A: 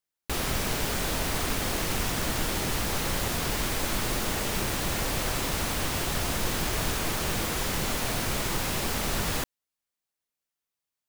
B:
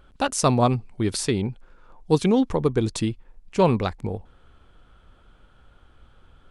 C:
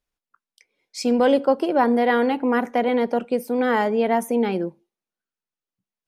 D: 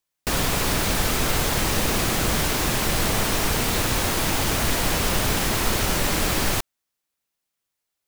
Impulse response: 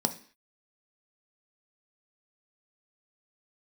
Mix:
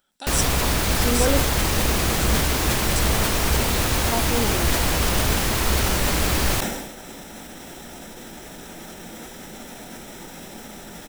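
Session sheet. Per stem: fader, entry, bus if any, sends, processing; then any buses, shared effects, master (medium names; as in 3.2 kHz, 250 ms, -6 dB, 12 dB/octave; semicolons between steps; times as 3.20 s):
-9.5 dB, 1.70 s, send -10 dB, peak limiter -23 dBFS, peak gain reduction 8 dB
-4.5 dB, 0.00 s, send -3.5 dB, pre-emphasis filter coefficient 0.97
-6.0 dB, 0.00 s, muted 1.42–4.12 s, no send, none
0.0 dB, 0.00 s, no send, peaking EQ 65 Hz +10.5 dB 0.42 oct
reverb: on, RT60 0.45 s, pre-delay 3 ms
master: decay stretcher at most 51 dB/s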